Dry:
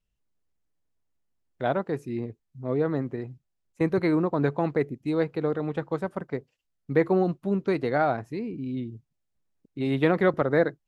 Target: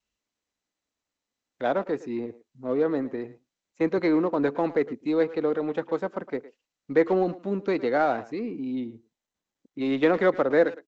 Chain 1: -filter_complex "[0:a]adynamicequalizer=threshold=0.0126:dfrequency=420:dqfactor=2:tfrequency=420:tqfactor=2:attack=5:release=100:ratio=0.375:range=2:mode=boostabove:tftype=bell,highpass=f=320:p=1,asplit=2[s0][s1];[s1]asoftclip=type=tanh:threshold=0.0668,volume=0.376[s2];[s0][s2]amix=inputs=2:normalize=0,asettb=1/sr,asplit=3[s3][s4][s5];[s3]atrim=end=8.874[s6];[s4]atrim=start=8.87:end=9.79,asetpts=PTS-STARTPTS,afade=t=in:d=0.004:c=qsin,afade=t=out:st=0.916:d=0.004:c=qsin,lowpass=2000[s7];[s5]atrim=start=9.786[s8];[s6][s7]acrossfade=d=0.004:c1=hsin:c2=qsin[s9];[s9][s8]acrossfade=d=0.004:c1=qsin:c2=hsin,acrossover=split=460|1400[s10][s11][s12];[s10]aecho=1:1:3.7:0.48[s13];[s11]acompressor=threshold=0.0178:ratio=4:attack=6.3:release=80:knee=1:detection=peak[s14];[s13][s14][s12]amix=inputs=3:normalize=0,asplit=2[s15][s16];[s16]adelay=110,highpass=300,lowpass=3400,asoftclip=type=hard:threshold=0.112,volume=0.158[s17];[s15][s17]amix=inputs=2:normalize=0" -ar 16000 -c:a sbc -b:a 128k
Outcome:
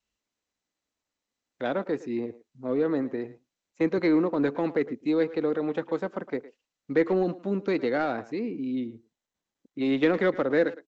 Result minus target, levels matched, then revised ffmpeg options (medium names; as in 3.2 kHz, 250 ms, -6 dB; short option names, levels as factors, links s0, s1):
compression: peak gain reduction +12.5 dB; saturation: distortion -5 dB
-filter_complex "[0:a]adynamicequalizer=threshold=0.0126:dfrequency=420:dqfactor=2:tfrequency=420:tqfactor=2:attack=5:release=100:ratio=0.375:range=2:mode=boostabove:tftype=bell,highpass=f=320:p=1,asplit=2[s0][s1];[s1]asoftclip=type=tanh:threshold=0.0251,volume=0.376[s2];[s0][s2]amix=inputs=2:normalize=0,asettb=1/sr,asplit=3[s3][s4][s5];[s3]atrim=end=8.874[s6];[s4]atrim=start=8.87:end=9.79,asetpts=PTS-STARTPTS,afade=t=in:d=0.004:c=qsin,afade=t=out:st=0.916:d=0.004:c=qsin,lowpass=2000[s7];[s5]atrim=start=9.786[s8];[s6][s7]acrossfade=d=0.004:c1=hsin:c2=qsin[s9];[s9][s8]acrossfade=d=0.004:c1=qsin:c2=hsin,acrossover=split=460|1400[s10][s11][s12];[s10]aecho=1:1:3.7:0.48[s13];[s13][s11][s12]amix=inputs=3:normalize=0,asplit=2[s14][s15];[s15]adelay=110,highpass=300,lowpass=3400,asoftclip=type=hard:threshold=0.112,volume=0.158[s16];[s14][s16]amix=inputs=2:normalize=0" -ar 16000 -c:a sbc -b:a 128k